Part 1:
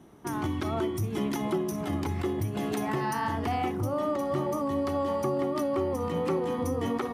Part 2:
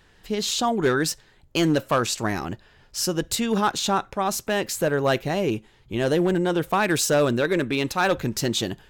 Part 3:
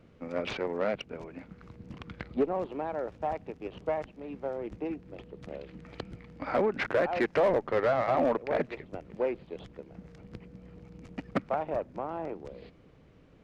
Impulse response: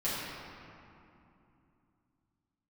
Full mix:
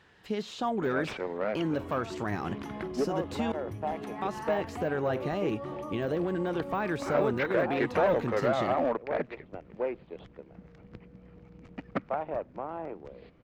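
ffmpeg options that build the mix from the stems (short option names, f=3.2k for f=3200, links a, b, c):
-filter_complex "[0:a]adelay=1300,volume=-10dB[a];[1:a]deesser=0.9,highpass=88,acontrast=28,volume=-8.5dB,asplit=3[b][c][d];[b]atrim=end=3.52,asetpts=PTS-STARTPTS,afade=t=out:st=3.516:d=0.004:c=hsin[e];[c]atrim=start=3.52:end=4.22,asetpts=PTS-STARTPTS,volume=0[f];[d]atrim=start=4.22,asetpts=PTS-STARTPTS,afade=t=in:d=0.004:c=hsin[g];[e][f][g]concat=n=3:v=0:a=1[h];[2:a]adelay=600,volume=-3dB[i];[a][h]amix=inputs=2:normalize=0,alimiter=limit=-23dB:level=0:latency=1:release=156,volume=0dB[j];[i][j]amix=inputs=2:normalize=0,lowpass=f=3.3k:p=1,equalizer=f=1.5k:t=o:w=2.7:g=3"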